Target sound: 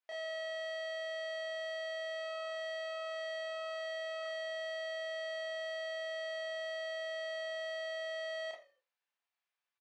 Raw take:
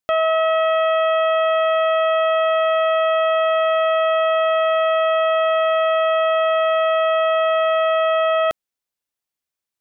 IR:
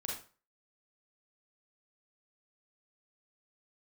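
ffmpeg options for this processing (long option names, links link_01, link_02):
-filter_complex "[0:a]asettb=1/sr,asplit=3[link_01][link_02][link_03];[link_01]atrim=end=2.054[link_04];[link_02]atrim=start=2.05:end=4.23,asetpts=PTS-STARTPTS,afade=type=in:duration=0.004:curve=qsin,afade=type=out:start_time=2.176:duration=0.004:curve=qsin,tremolo=f=1.6:d=0.66[link_05];[link_03]atrim=start=4.226[link_06];[link_04][link_05]acrossfade=duration=0.004:curve1=hsin:curve2=qsin[link_07];[link_07][link_06]acrossfade=duration=0.004:curve1=qsin:curve2=hsin,aeval=exprs='(tanh(63.1*val(0)+0.35)-tanh(0.35))/63.1':channel_layout=same,highpass=790,lowpass=3000,asplit=4[link_08][link_09][link_10][link_11];[link_09]adelay=81,afreqshift=-42,volume=-19dB[link_12];[link_10]adelay=162,afreqshift=-84,volume=-28.1dB[link_13];[link_11]adelay=243,afreqshift=-126,volume=-37.2dB[link_14];[link_08][link_12][link_13][link_14]amix=inputs=4:normalize=0[link_15];[1:a]atrim=start_sample=2205,asetrate=70560,aresample=44100[link_16];[link_15][link_16]afir=irnorm=-1:irlink=0,volume=6.5dB"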